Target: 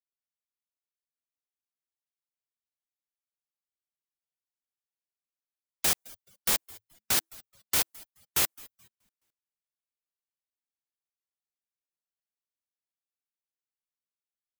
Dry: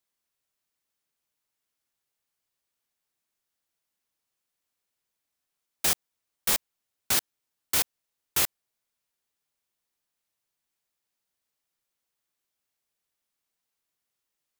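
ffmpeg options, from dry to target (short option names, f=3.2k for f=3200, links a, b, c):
-filter_complex "[0:a]acontrast=25,asplit=5[a][b][c][d][e];[b]adelay=213,afreqshift=-110,volume=-21dB[f];[c]adelay=426,afreqshift=-220,volume=-26.2dB[g];[d]adelay=639,afreqshift=-330,volume=-31.4dB[h];[e]adelay=852,afreqshift=-440,volume=-36.6dB[i];[a][f][g][h][i]amix=inputs=5:normalize=0,dynaudnorm=f=100:g=5:m=4dB,afftdn=nr=19:nf=-42,volume=-9dB"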